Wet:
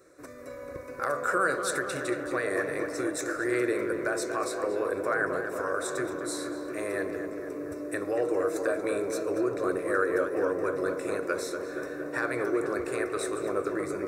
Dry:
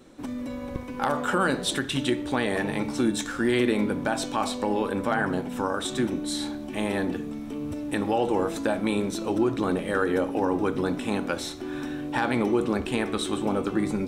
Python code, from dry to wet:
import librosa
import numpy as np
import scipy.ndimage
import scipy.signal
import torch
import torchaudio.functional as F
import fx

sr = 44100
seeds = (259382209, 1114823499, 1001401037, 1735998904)

y = fx.highpass(x, sr, hz=250.0, slope=6)
y = fx.fixed_phaser(y, sr, hz=850.0, stages=6)
y = fx.echo_tape(y, sr, ms=234, feedback_pct=90, wet_db=-5.0, lp_hz=1700.0, drive_db=17.0, wow_cents=33)